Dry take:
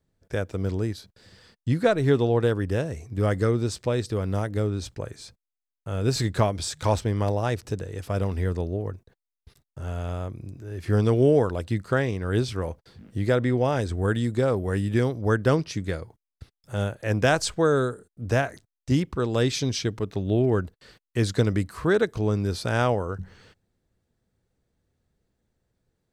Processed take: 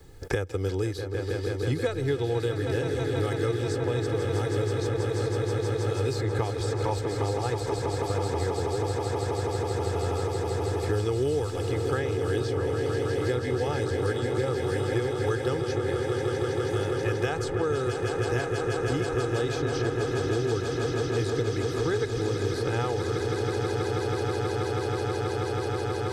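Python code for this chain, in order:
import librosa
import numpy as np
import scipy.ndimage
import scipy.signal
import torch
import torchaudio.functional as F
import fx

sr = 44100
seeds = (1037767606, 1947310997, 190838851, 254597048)

p1 = x + 0.76 * np.pad(x, (int(2.4 * sr / 1000.0), 0))[:len(x)]
p2 = p1 + fx.echo_swell(p1, sr, ms=161, loudest=8, wet_db=-10.5, dry=0)
p3 = fx.band_squash(p2, sr, depth_pct=100)
y = p3 * 10.0 ** (-8.0 / 20.0)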